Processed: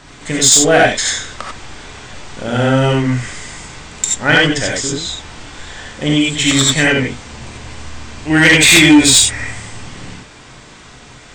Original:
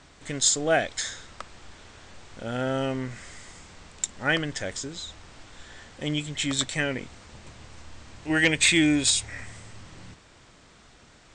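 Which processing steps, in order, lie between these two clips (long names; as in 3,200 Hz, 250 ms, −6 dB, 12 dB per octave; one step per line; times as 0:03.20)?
reverb whose tail is shaped and stops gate 110 ms rising, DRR −3 dB
sine wavefolder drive 7 dB, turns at −2.5 dBFS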